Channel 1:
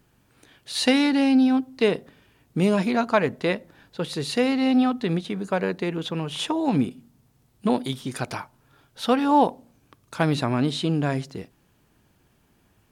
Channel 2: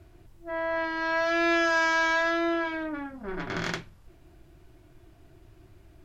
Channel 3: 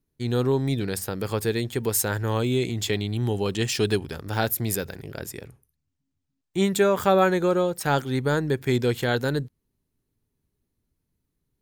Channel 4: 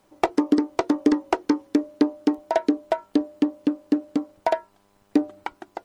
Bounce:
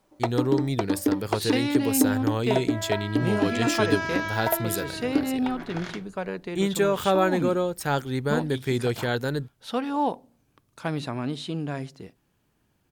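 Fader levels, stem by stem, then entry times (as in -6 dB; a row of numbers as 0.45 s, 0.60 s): -7.0 dB, -6.5 dB, -2.5 dB, -5.0 dB; 0.65 s, 2.20 s, 0.00 s, 0.00 s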